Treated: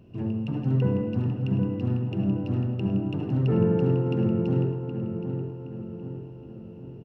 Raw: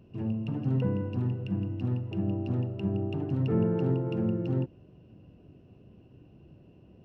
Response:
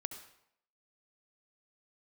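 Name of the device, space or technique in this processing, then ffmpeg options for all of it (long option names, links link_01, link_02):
bathroom: -filter_complex "[0:a]asplit=2[link_01][link_02];[link_02]adelay=770,lowpass=frequency=2300:poles=1,volume=-7dB,asplit=2[link_03][link_04];[link_04]adelay=770,lowpass=frequency=2300:poles=1,volume=0.51,asplit=2[link_05][link_06];[link_06]adelay=770,lowpass=frequency=2300:poles=1,volume=0.51,asplit=2[link_07][link_08];[link_08]adelay=770,lowpass=frequency=2300:poles=1,volume=0.51,asplit=2[link_09][link_10];[link_10]adelay=770,lowpass=frequency=2300:poles=1,volume=0.51,asplit=2[link_11][link_12];[link_12]adelay=770,lowpass=frequency=2300:poles=1,volume=0.51[link_13];[link_01][link_03][link_05][link_07][link_09][link_11][link_13]amix=inputs=7:normalize=0[link_14];[1:a]atrim=start_sample=2205[link_15];[link_14][link_15]afir=irnorm=-1:irlink=0,volume=5dB"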